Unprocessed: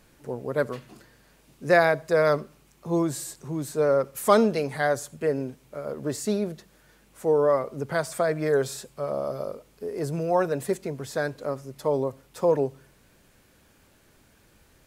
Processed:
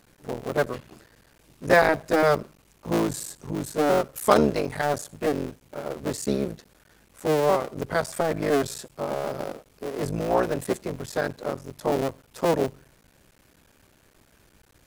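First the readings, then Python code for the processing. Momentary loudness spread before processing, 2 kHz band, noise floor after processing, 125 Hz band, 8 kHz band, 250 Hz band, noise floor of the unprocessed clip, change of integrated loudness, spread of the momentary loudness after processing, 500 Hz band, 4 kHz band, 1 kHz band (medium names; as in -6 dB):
14 LU, +1.0 dB, -60 dBFS, +0.5 dB, +1.5 dB, +1.5 dB, -60 dBFS, 0.0 dB, 14 LU, -0.5 dB, +3.5 dB, +2.5 dB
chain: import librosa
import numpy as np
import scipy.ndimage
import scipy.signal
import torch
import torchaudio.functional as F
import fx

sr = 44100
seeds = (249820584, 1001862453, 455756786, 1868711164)

y = fx.cycle_switch(x, sr, every=3, mode='muted')
y = y * librosa.db_to_amplitude(2.0)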